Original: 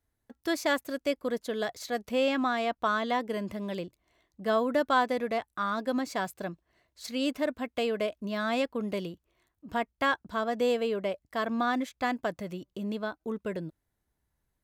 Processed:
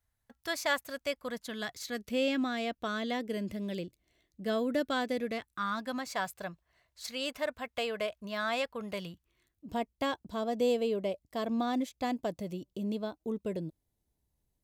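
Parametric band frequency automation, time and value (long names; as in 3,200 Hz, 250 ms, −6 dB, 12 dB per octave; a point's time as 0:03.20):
parametric band −13 dB 1.2 octaves
0:01.23 330 Hz
0:02.22 1,000 Hz
0:05.23 1,000 Hz
0:06.11 290 Hz
0:08.95 290 Hz
0:09.73 1,500 Hz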